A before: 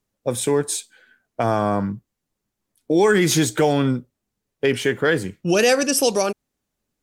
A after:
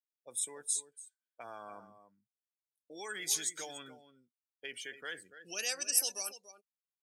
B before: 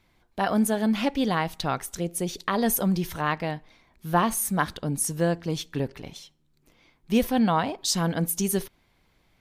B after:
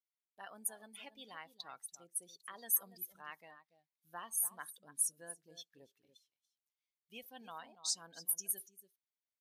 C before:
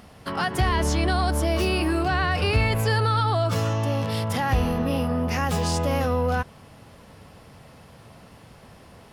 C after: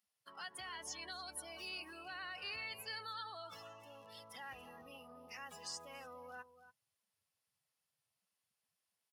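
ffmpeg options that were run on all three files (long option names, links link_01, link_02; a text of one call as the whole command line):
ffmpeg -i in.wav -af "aecho=1:1:286:0.282,afftdn=noise_reduction=21:noise_floor=-31,aderivative,volume=-7dB" out.wav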